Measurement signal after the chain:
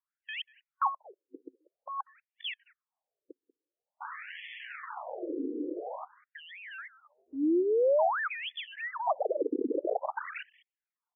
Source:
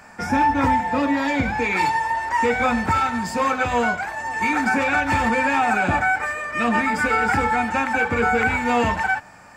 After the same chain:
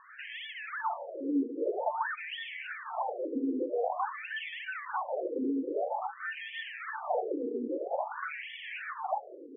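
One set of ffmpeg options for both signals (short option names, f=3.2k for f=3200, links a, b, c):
-filter_complex "[0:a]superequalizer=6b=3.16:11b=1.78:12b=2:16b=0.398,acrossover=split=220|460|2700[a][b][c][d];[a]acontrast=82[e];[e][b][c][d]amix=inputs=4:normalize=0,acrusher=samples=24:mix=1:aa=0.000001:lfo=1:lforange=14.4:lforate=3.1,adynamicequalizer=threshold=0.0282:dfrequency=510:dqfactor=1.5:tfrequency=510:tqfactor=1.5:attack=5:release=100:ratio=0.375:range=2:mode=boostabove:tftype=bell,acompressor=threshold=-21dB:ratio=10,highpass=f=84:w=0.5412,highpass=f=84:w=1.3066,bandreject=f=60:t=h:w=6,bandreject=f=120:t=h:w=6,alimiter=limit=-19.5dB:level=0:latency=1:release=20,asplit=2[f][g];[g]adelay=190,highpass=300,lowpass=3.4k,asoftclip=type=hard:threshold=-28.5dB,volume=-18dB[h];[f][h]amix=inputs=2:normalize=0,afftfilt=real='re*between(b*sr/1024,340*pow(2500/340,0.5+0.5*sin(2*PI*0.49*pts/sr))/1.41,340*pow(2500/340,0.5+0.5*sin(2*PI*0.49*pts/sr))*1.41)':imag='im*between(b*sr/1024,340*pow(2500/340,0.5+0.5*sin(2*PI*0.49*pts/sr))/1.41,340*pow(2500/340,0.5+0.5*sin(2*PI*0.49*pts/sr))*1.41)':win_size=1024:overlap=0.75"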